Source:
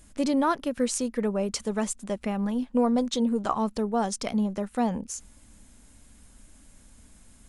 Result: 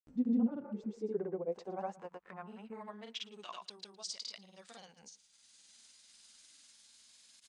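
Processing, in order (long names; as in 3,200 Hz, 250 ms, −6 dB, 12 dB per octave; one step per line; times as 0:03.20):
pitch glide at a constant tempo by −3 semitones ending unshifted
band-pass filter sweep 250 Hz → 4,400 Hz, 0:00.48–0:03.83
in parallel at −2.5 dB: upward compression, threshold −35 dBFS
on the sum: healed spectral selection 0:00.60–0:00.94, 390–2,600 Hz both
granular cloud, pitch spread up and down by 0 semitones
on a send: single-tap delay 112 ms −22 dB
on the sum: level −6.5 dB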